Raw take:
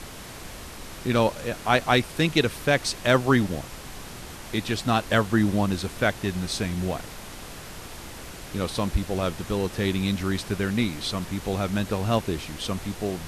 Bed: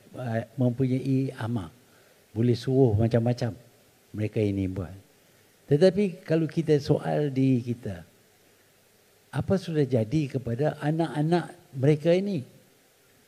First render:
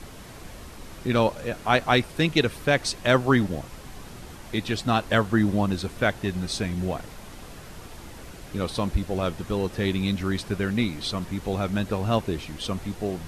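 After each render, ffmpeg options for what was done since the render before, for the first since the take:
-af "afftdn=nr=6:nf=-40"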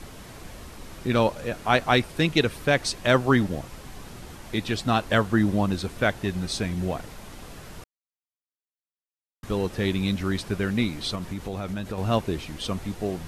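-filter_complex "[0:a]asettb=1/sr,asplit=3[s0][s1][s2];[s0]atrim=end=11.154[s3];[s1]atrim=start=11.15:end=11.98,asetpts=PTS-STARTPTS,afade=t=in:d=0.004:c=qsin,afade=t=out:st=0.826:d=0.004:c=qsin,acompressor=threshold=0.0447:ratio=6:attack=3.2:release=140:knee=1:detection=peak[s4];[s2]atrim=start=11.976[s5];[s3][s4]acrossfade=d=0.004:c1=hsin:c2=qsin[s6];[s6][s5]acrossfade=d=0.004:c1=qsin:c2=hsin,asplit=3[s7][s8][s9];[s7]atrim=end=7.84,asetpts=PTS-STARTPTS,afade=t=out:st=7.836:d=0.004:c=hsin[s10];[s8]atrim=start=7.84:end=9.43,asetpts=PTS-STARTPTS,volume=0[s11];[s9]atrim=start=9.43,asetpts=PTS-STARTPTS,afade=t=in:d=0.004:c=hsin[s12];[s10][s11][s12]concat=n=3:v=0:a=1"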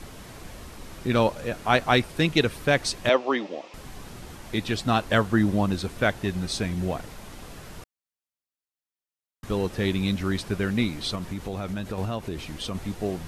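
-filter_complex "[0:a]asettb=1/sr,asplit=3[s0][s1][s2];[s0]atrim=end=3.094[s3];[s1]atrim=start=3.09:end=3.74,asetpts=PTS-STARTPTS,afade=t=in:d=0.004:c=qsin,afade=t=out:st=0.646:d=0.004:c=qsin,highpass=f=310:w=0.5412,highpass=f=310:w=1.3066,equalizer=f=390:t=q:w=4:g=-3,equalizer=f=570:t=q:w=4:g=3,equalizer=f=1500:t=q:w=4:g=-10,equalizer=f=2600:t=q:w=4:g=4,equalizer=f=4300:t=q:w=4:g=-3,lowpass=f=5400:w=0.5412,lowpass=f=5400:w=1.3066[s4];[s2]atrim=start=3.736[s5];[s3][s4]acrossfade=d=0.004:c1=hsin:c2=qsin[s6];[s6][s5]acrossfade=d=0.004:c1=qsin:c2=hsin,asettb=1/sr,asplit=3[s7][s8][s9];[s7]atrim=end=12.054[s10];[s8]atrim=start=12.05:end=12.75,asetpts=PTS-STARTPTS,afade=t=in:d=0.004:c=qsin,afade=t=out:st=0.696:d=0.004:c=qsin,acompressor=threshold=0.0398:ratio=3:attack=3.2:release=140:knee=1:detection=peak[s11];[s9]atrim=start=12.746[s12];[s10][s11]acrossfade=d=0.004:c1=hsin:c2=qsin[s13];[s13][s12]acrossfade=d=0.004:c1=qsin:c2=hsin"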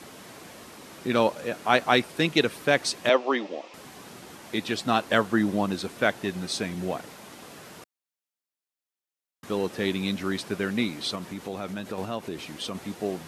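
-af "highpass=200"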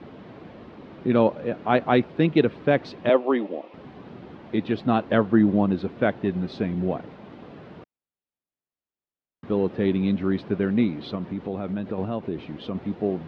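-af "lowpass=f=3700:w=0.5412,lowpass=f=3700:w=1.3066,tiltshelf=f=820:g=7.5"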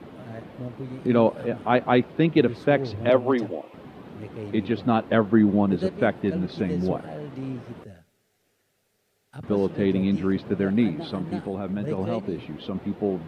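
-filter_complex "[1:a]volume=0.299[s0];[0:a][s0]amix=inputs=2:normalize=0"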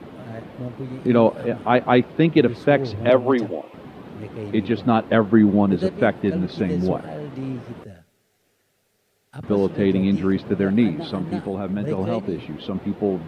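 -af "volume=1.5,alimiter=limit=0.708:level=0:latency=1"

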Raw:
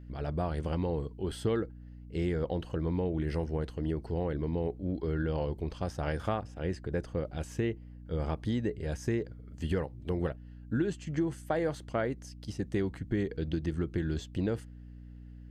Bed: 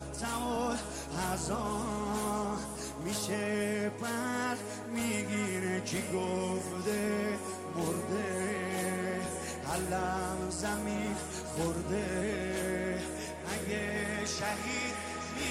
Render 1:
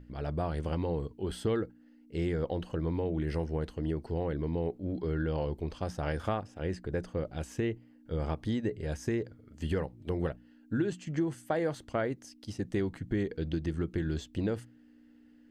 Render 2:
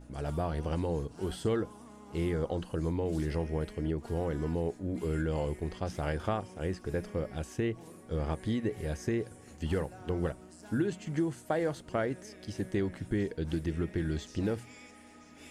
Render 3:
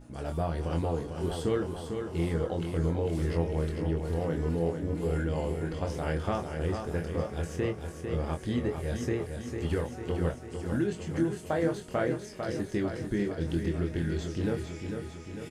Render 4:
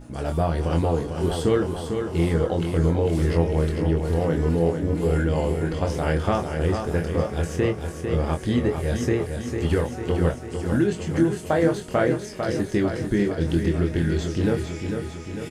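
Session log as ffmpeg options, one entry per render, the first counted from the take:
-af "bandreject=f=60:t=h:w=6,bandreject=f=120:t=h:w=6,bandreject=f=180:t=h:w=6"
-filter_complex "[1:a]volume=0.133[s0];[0:a][s0]amix=inputs=2:normalize=0"
-filter_complex "[0:a]asplit=2[s0][s1];[s1]adelay=24,volume=0.531[s2];[s0][s2]amix=inputs=2:normalize=0,aecho=1:1:449|898|1347|1796|2245|2694|3143|3592:0.473|0.284|0.17|0.102|0.0613|0.0368|0.0221|0.0132"
-af "volume=2.51"

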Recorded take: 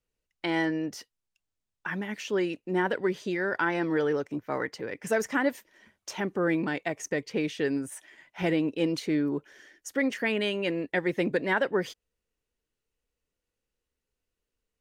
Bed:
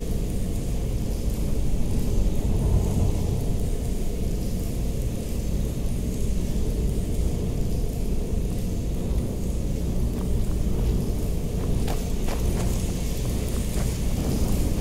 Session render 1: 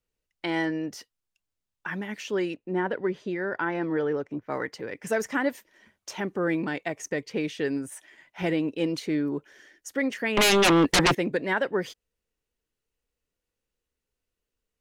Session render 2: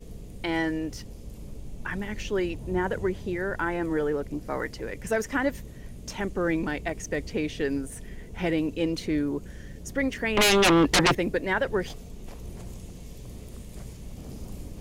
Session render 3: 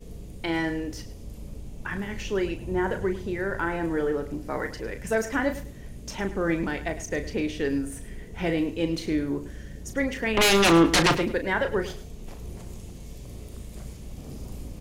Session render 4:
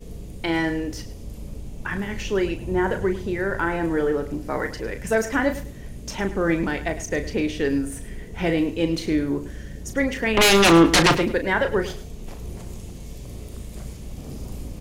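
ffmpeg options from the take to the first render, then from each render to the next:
-filter_complex "[0:a]asplit=3[s0][s1][s2];[s0]afade=t=out:st=2.53:d=0.02[s3];[s1]lowpass=f=1800:p=1,afade=t=in:st=2.53:d=0.02,afade=t=out:st=4.48:d=0.02[s4];[s2]afade=t=in:st=4.48:d=0.02[s5];[s3][s4][s5]amix=inputs=3:normalize=0,asettb=1/sr,asplit=3[s6][s7][s8];[s6]atrim=end=10.374[s9];[s7]atrim=start=10.37:end=11.15,asetpts=PTS-STARTPTS,afade=t=in:d=0.004:c=qsin,afade=t=out:st=0.776:d=0.004:c=qsin,aeval=exprs='0.168*sin(PI/2*5.01*val(0)/0.168)':c=same[s10];[s8]atrim=start=11.146[s11];[s9][s10]acrossfade=d=0.004:c1=hsin:c2=qsin[s12];[s12][s11]acrossfade=d=0.004:c1=qsin:c2=hsin"
-filter_complex "[1:a]volume=0.168[s0];[0:a][s0]amix=inputs=2:normalize=0"
-filter_complex "[0:a]asplit=2[s0][s1];[s1]adelay=36,volume=0.355[s2];[s0][s2]amix=inputs=2:normalize=0,aecho=1:1:105|210:0.188|0.0433"
-af "volume=1.58"

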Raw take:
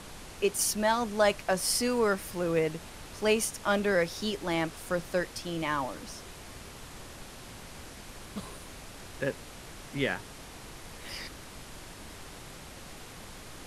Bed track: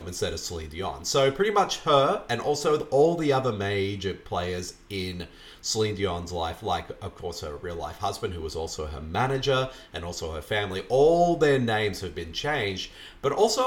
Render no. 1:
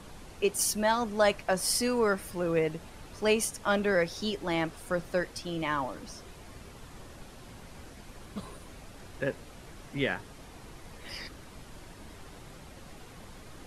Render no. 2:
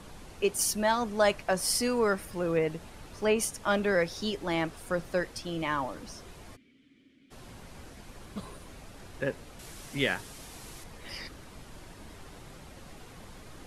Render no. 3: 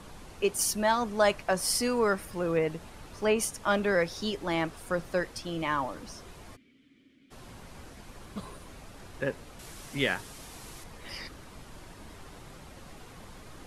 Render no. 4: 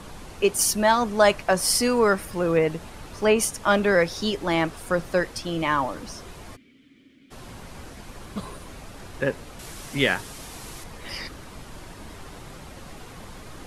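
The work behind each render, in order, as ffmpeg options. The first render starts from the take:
-af "afftdn=nr=7:nf=-47"
-filter_complex "[0:a]asettb=1/sr,asplit=3[s0][s1][s2];[s0]atrim=end=2.254[s3];[s1]atrim=start=2.25:end=3.39,asetpts=PTS-STARTPTS,afade=t=in:d=0.004:c=qsin,afade=t=out:st=1.136:d=0.004:c=qsin,acrossover=split=2800[s4][s5];[s5]acompressor=threshold=0.00562:ratio=4:attack=1:release=60[s6];[s4][s6]amix=inputs=2:normalize=0[s7];[s2]atrim=start=3.386[s8];[s3][s7]acrossfade=d=0.004:c1=hsin:c2=qsin[s9];[s9][s8]acrossfade=d=0.004:c1=qsin:c2=hsin,asplit=3[s10][s11][s12];[s10]afade=t=out:st=6.55:d=0.02[s13];[s11]asplit=3[s14][s15][s16];[s14]bandpass=f=270:t=q:w=8,volume=1[s17];[s15]bandpass=f=2290:t=q:w=8,volume=0.501[s18];[s16]bandpass=f=3010:t=q:w=8,volume=0.355[s19];[s17][s18][s19]amix=inputs=3:normalize=0,afade=t=in:st=6.55:d=0.02,afade=t=out:st=7.3:d=0.02[s20];[s12]afade=t=in:st=7.3:d=0.02[s21];[s13][s20][s21]amix=inputs=3:normalize=0,asettb=1/sr,asplit=3[s22][s23][s24];[s22]atrim=end=9.594[s25];[s23]atrim=start=9.59:end=10.84,asetpts=PTS-STARTPTS,afade=t=in:d=0.004:c=qsin,afade=t=out:st=1.246:d=0.004:c=qsin,highshelf=f=3500:g=11.5[s26];[s24]atrim=start=10.836[s27];[s25][s26]acrossfade=d=0.004:c1=hsin:c2=qsin[s28];[s28][s27]acrossfade=d=0.004:c1=qsin:c2=hsin"
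-af "equalizer=f=1100:t=o:w=0.77:g=2"
-af "volume=2.11"

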